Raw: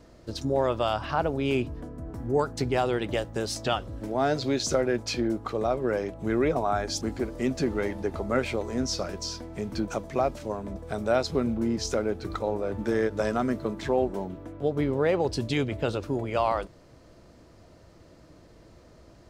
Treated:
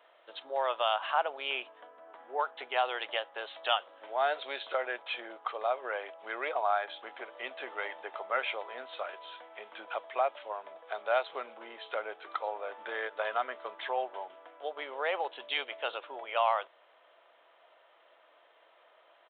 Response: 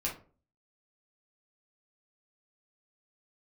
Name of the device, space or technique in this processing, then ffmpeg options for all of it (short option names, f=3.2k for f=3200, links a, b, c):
musical greeting card: -af "aresample=8000,aresample=44100,highpass=f=670:w=0.5412,highpass=f=670:w=1.3066,equalizer=f=3.1k:t=o:w=0.22:g=5"